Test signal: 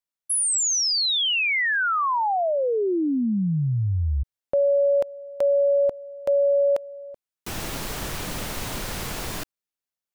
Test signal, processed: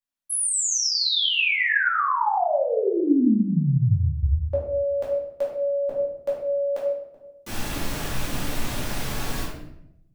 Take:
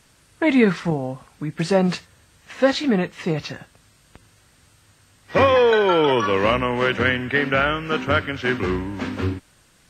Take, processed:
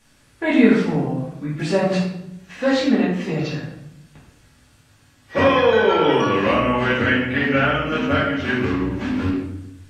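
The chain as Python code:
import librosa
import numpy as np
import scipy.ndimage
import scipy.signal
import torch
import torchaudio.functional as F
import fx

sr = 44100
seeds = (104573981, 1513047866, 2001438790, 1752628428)

y = fx.room_shoebox(x, sr, seeds[0], volume_m3=200.0, walls='mixed', distance_m=2.4)
y = y * librosa.db_to_amplitude(-7.5)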